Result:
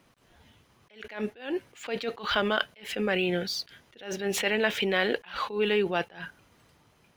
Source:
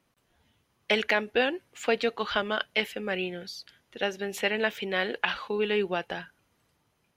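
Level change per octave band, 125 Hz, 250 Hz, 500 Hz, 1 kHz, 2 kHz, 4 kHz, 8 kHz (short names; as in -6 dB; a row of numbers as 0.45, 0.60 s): +4.0, +2.5, -0.5, -0.5, -1.5, 0.0, +5.5 dB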